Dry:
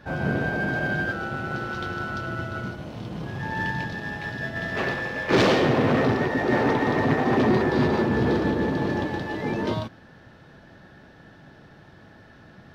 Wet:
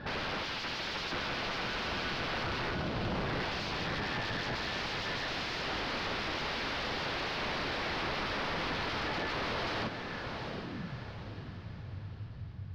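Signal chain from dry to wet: 8.59–9.34 bell 120 Hz -13 dB 2 oct; compressor 6:1, threshold -23 dBFS, peak gain reduction 8.5 dB; wrapped overs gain 28.5 dB; low-pass sweep 5000 Hz -> 100 Hz, 9.87–11.04; soft clip -36.5 dBFS, distortion -8 dB; air absorption 250 m; diffused feedback echo 0.734 s, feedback 43%, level -7 dB; gain +6 dB

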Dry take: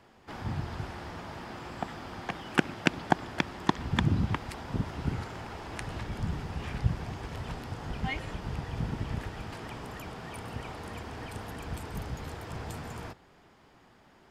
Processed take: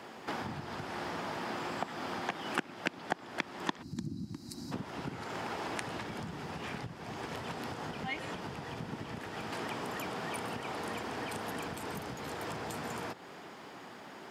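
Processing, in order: spectral gain 3.82–4.72, 350–3800 Hz -21 dB; compressor 4:1, threshold -46 dBFS, peak gain reduction 24 dB; HPF 200 Hz 12 dB/oct; gain +11.5 dB

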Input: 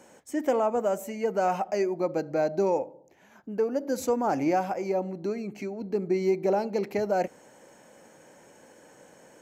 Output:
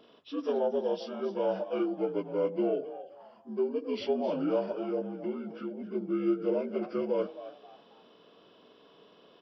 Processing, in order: inharmonic rescaling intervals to 76%; frequency-shifting echo 0.266 s, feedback 30%, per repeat +110 Hz, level -14 dB; gain -3 dB

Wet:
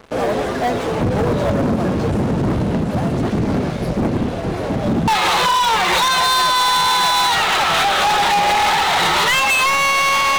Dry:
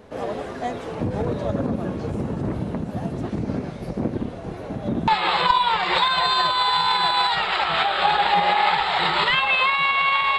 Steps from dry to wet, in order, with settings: sample leveller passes 5; gain -6.5 dB

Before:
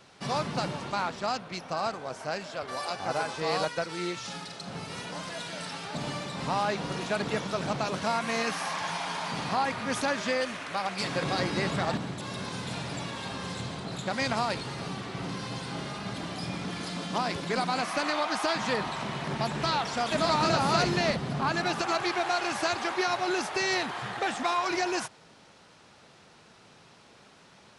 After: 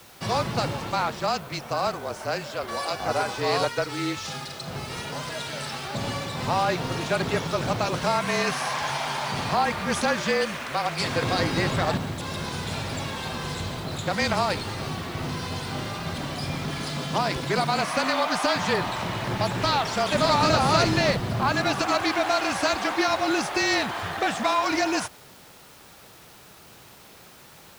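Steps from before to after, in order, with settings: frequency shift -30 Hz; in parallel at -7 dB: requantised 8-bit, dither triangular; on the sum: gain +1.5 dB

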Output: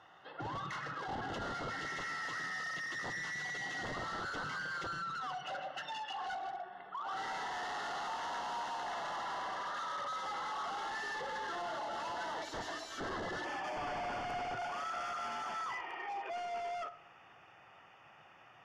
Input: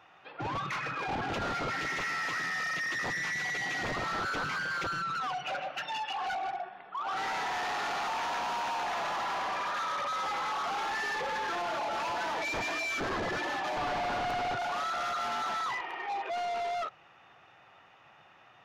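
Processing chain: LPF 11000 Hz 24 dB/oct; compressor 2.5:1, threshold -40 dBFS, peak gain reduction 5.5 dB; Butterworth band-stop 2400 Hz, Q 4.6, from 13.44 s 3900 Hz; reverb RT60 0.90 s, pre-delay 18 ms, DRR 13.5 dB; gain -1.5 dB

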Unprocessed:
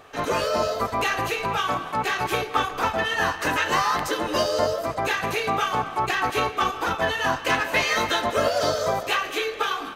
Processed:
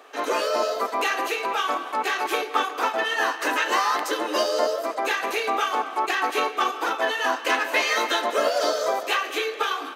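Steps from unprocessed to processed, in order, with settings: steep high-pass 270 Hz 36 dB/oct

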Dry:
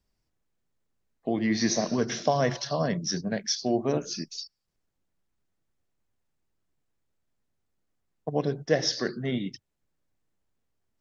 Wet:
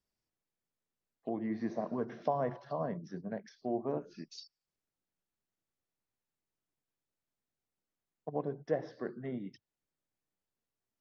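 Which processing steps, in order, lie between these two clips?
low shelf 110 Hz -10.5 dB; treble ducked by the level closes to 1100 Hz, closed at -27.5 dBFS; dynamic EQ 970 Hz, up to +5 dB, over -43 dBFS, Q 2.2; gain -8 dB

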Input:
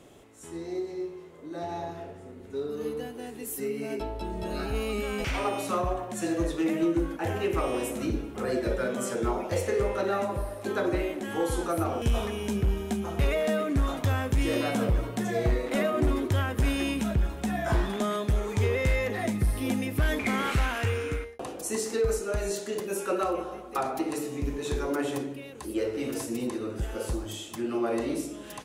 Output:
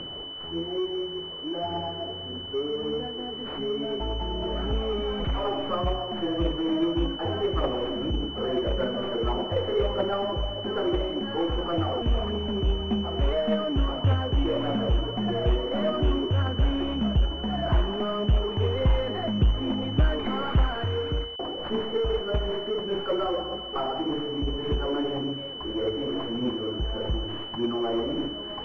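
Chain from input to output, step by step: tracing distortion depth 0.24 ms; reverse; upward compressor, threshold -38 dBFS; reverse; bit-crush 8-bit; phaser 1.7 Hz, delay 3.3 ms, feedback 41%; in parallel at -6 dB: wavefolder -30 dBFS; on the sum: pulse-width modulation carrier 3000 Hz

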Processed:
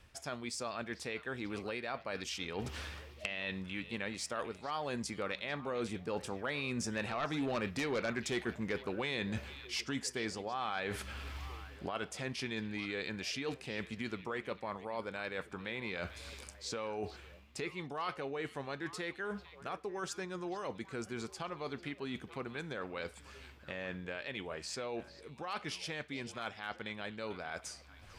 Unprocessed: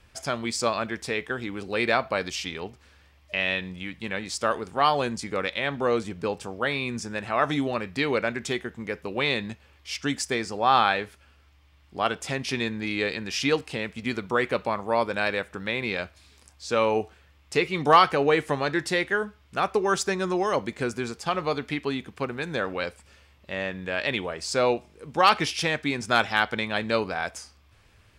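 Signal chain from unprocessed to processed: recorder AGC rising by 19 dB/s; Doppler pass-by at 7.86, 9 m/s, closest 5.2 m; sine folder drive 6 dB, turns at -11.5 dBFS; reverse; compressor 5:1, threshold -51 dBFS, peak gain reduction 31 dB; reverse; delay with a stepping band-pass 0.445 s, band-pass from 3200 Hz, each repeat -1.4 oct, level -11 dB; gain +12 dB

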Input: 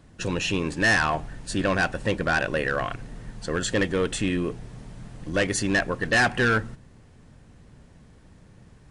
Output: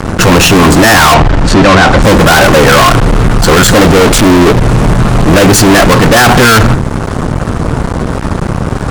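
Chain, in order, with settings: resonant high shelf 1600 Hz -6.5 dB, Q 3; fuzz box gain 45 dB, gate -52 dBFS; 1.14–2.02 air absorption 87 m; maximiser +16 dB; 3.92–4.6 Doppler distortion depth 0.83 ms; gain -1 dB

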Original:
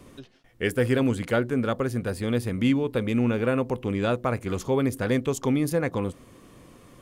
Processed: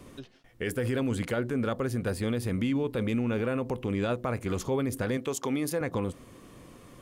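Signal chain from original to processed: 5.17–5.81 HPF 370 Hz 6 dB/oct; limiter -20.5 dBFS, peak gain reduction 9 dB

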